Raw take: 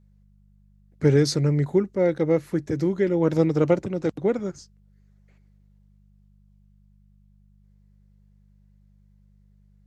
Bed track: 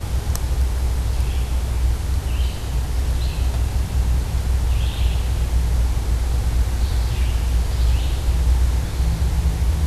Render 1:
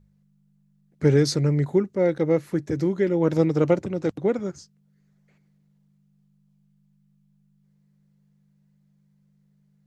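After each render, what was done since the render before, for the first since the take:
hum removal 50 Hz, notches 2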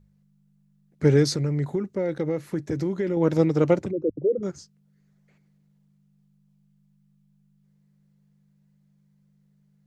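0:01.24–0:03.17: downward compressor, threshold −21 dBFS
0:03.91–0:04.43: spectral envelope exaggerated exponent 3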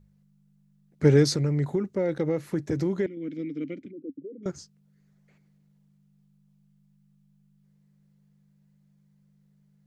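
0:03.06–0:04.46: formant filter i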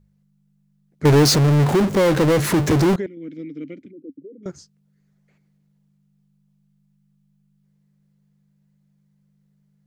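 0:01.05–0:02.96: power curve on the samples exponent 0.35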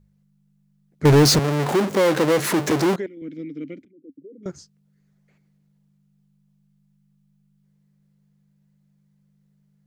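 0:01.39–0:03.22: Bessel high-pass filter 280 Hz
0:03.85–0:04.47: fade in, from −17 dB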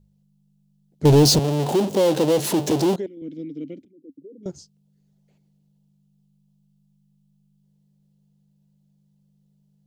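flat-topped bell 1,600 Hz −11.5 dB 1.3 octaves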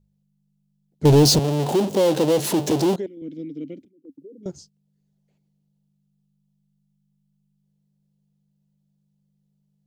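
noise gate −49 dBFS, range −6 dB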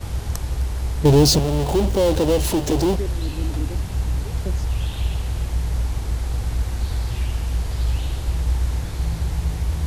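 mix in bed track −3.5 dB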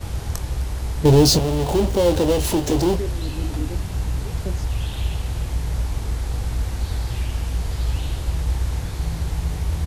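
double-tracking delay 23 ms −10.5 dB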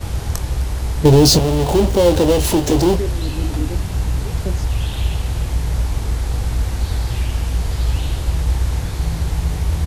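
level +4.5 dB
brickwall limiter −3 dBFS, peak gain reduction 3 dB

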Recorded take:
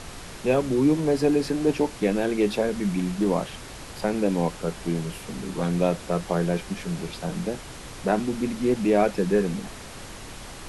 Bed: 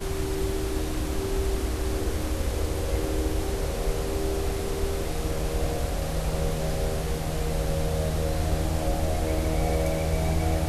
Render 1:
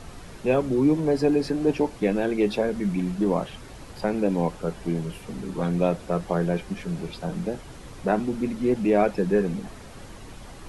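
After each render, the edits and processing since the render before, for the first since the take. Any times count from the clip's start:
broadband denoise 8 dB, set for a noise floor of −40 dBFS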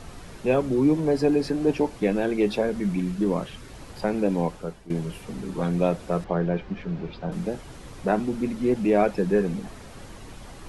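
0:02.99–0:03.73: parametric band 750 Hz −6 dB 0.76 octaves
0:04.25–0:04.90: fade out equal-power, to −17.5 dB
0:06.24–0:07.32: high-frequency loss of the air 210 metres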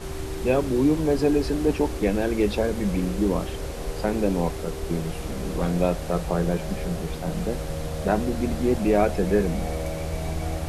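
mix in bed −4 dB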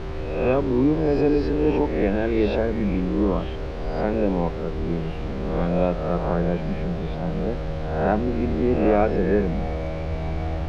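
peak hold with a rise ahead of every peak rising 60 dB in 0.93 s
high-frequency loss of the air 250 metres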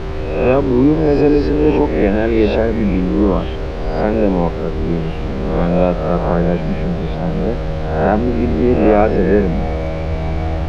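level +7.5 dB
brickwall limiter −1 dBFS, peak gain reduction 2 dB

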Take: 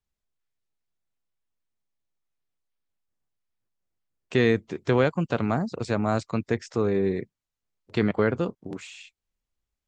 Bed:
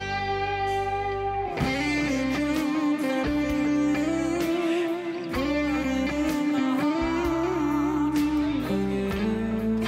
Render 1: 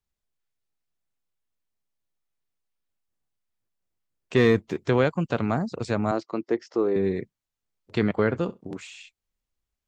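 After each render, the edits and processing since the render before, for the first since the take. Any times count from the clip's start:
0:04.36–0:04.78: leveller curve on the samples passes 1
0:06.11–0:06.96: loudspeaker in its box 310–5,200 Hz, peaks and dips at 340 Hz +9 dB, 1,600 Hz −6 dB, 2,400 Hz −8 dB, 3,700 Hz −8 dB
0:08.14–0:08.61: flutter between parallel walls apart 11.3 metres, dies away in 0.2 s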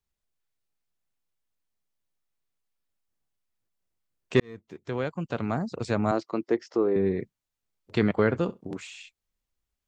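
0:04.40–0:06.07: fade in
0:06.77–0:07.20: high-frequency loss of the air 250 metres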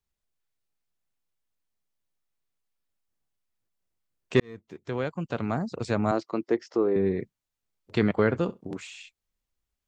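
no processing that can be heard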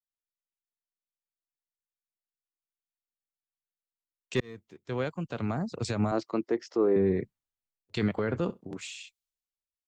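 brickwall limiter −18.5 dBFS, peak gain reduction 9 dB
multiband upward and downward expander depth 70%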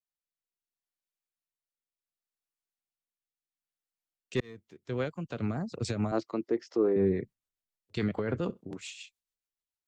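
rotating-speaker cabinet horn 0.7 Hz, later 7 Hz, at 0:04.01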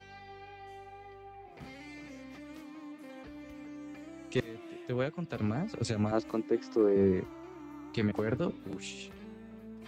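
mix in bed −22 dB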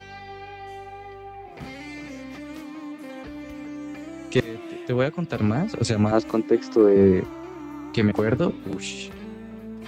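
level +10 dB

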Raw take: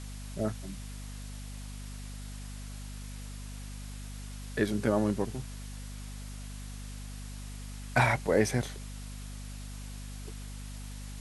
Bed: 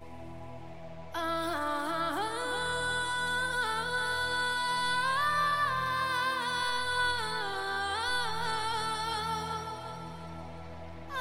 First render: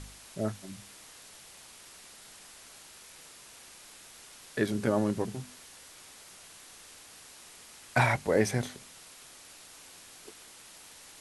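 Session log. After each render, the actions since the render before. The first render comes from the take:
hum removal 50 Hz, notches 5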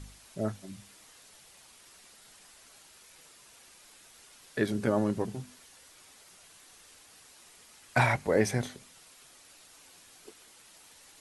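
broadband denoise 6 dB, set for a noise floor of −52 dBFS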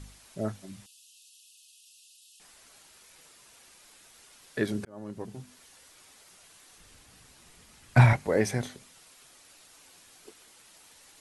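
0:00.86–0:02.40: linear-phase brick-wall high-pass 2,500 Hz
0:04.85–0:05.67: fade in
0:06.78–0:08.13: bass and treble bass +13 dB, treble −2 dB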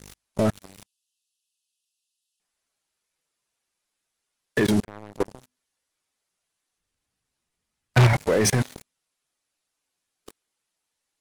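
output level in coarse steps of 18 dB
leveller curve on the samples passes 5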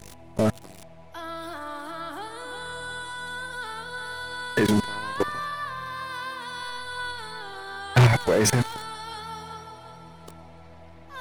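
mix in bed −3.5 dB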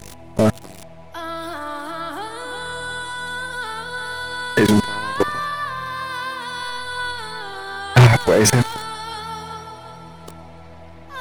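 level +6.5 dB

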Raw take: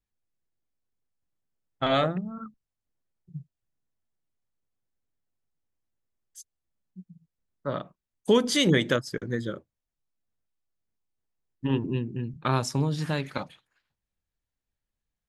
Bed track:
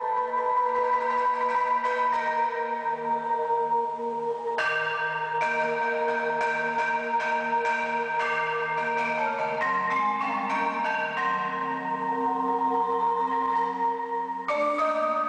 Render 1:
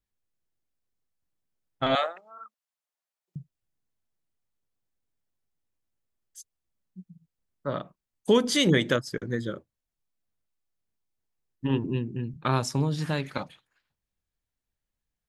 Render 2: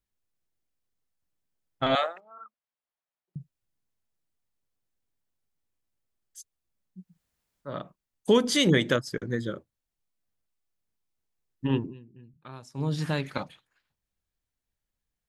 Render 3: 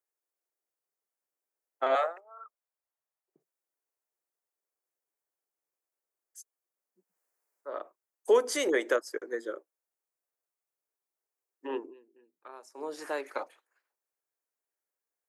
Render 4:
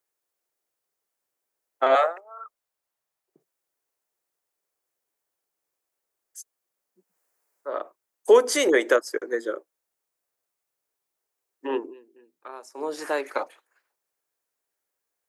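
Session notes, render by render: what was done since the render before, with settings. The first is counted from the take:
0:01.95–0:03.36: high-pass filter 610 Hz 24 dB per octave
0:02.20–0:03.40: high-frequency loss of the air 250 metres; 0:07.07–0:07.71: fill with room tone, crossfade 0.24 s; 0:11.79–0:12.89: duck −19 dB, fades 0.15 s
Butterworth high-pass 360 Hz 36 dB per octave; parametric band 3,500 Hz −14.5 dB 1 octave
level +7.5 dB

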